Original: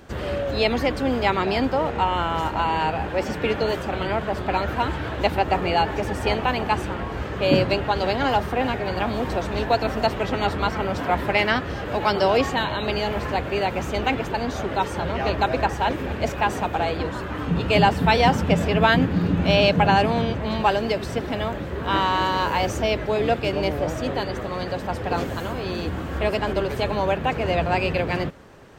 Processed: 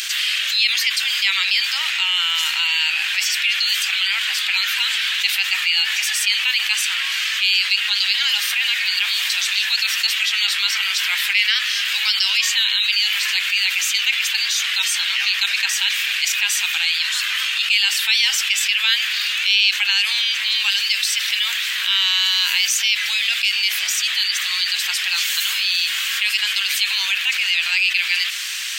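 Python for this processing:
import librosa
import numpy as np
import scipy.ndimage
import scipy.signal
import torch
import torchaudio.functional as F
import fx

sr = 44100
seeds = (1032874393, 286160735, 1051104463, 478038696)

y = scipy.signal.sosfilt(scipy.signal.cheby2(4, 80, 430.0, 'highpass', fs=sr, output='sos'), x)
y = fx.env_flatten(y, sr, amount_pct=70)
y = F.gain(torch.from_numpy(y), 9.0).numpy()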